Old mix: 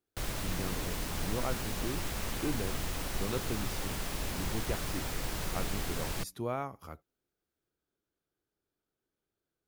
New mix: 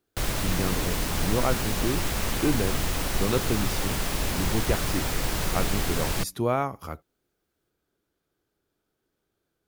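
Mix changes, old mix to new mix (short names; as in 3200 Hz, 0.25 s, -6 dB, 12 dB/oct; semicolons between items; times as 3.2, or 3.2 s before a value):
speech +10.0 dB; background +8.5 dB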